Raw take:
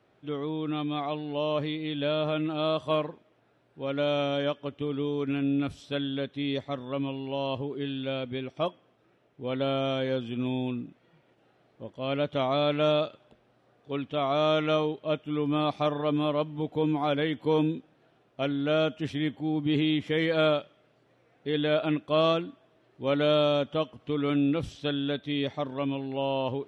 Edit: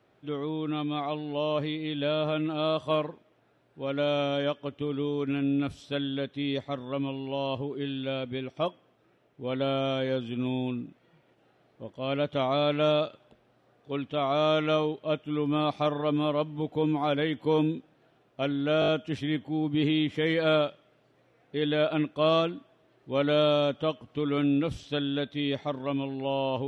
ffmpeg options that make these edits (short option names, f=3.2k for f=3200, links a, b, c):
-filter_complex "[0:a]asplit=5[a][b][c][d][e];[a]atrim=end=18.822[f];[b]atrim=start=18.798:end=18.822[g];[c]atrim=start=18.798:end=18.822[h];[d]atrim=start=18.798:end=18.822[i];[e]atrim=start=18.798[j];[f][g]acrossfade=d=0.004:c1=hsin:c2=hsin[k];[k][h]acrossfade=d=0.004:c1=hsin:c2=hsin[l];[l][i]acrossfade=d=0.004:c1=hsin:c2=hsin[m];[m][j]acrossfade=d=0.004:c1=hsin:c2=hsin"